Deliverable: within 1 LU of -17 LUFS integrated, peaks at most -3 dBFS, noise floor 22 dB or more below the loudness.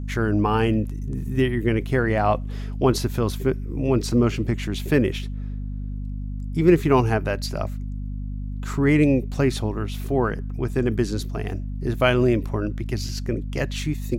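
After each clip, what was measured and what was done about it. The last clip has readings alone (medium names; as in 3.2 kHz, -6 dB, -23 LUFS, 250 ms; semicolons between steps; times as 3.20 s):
hum 50 Hz; highest harmonic 250 Hz; hum level -27 dBFS; loudness -23.5 LUFS; peak level -4.0 dBFS; loudness target -17.0 LUFS
-> de-hum 50 Hz, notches 5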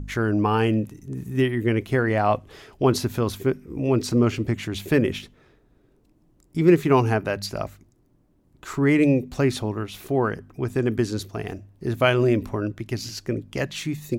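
hum not found; loudness -23.5 LUFS; peak level -4.5 dBFS; loudness target -17.0 LUFS
-> trim +6.5 dB; peak limiter -3 dBFS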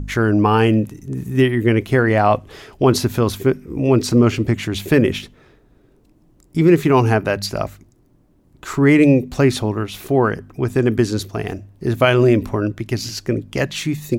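loudness -17.5 LUFS; peak level -3.0 dBFS; noise floor -55 dBFS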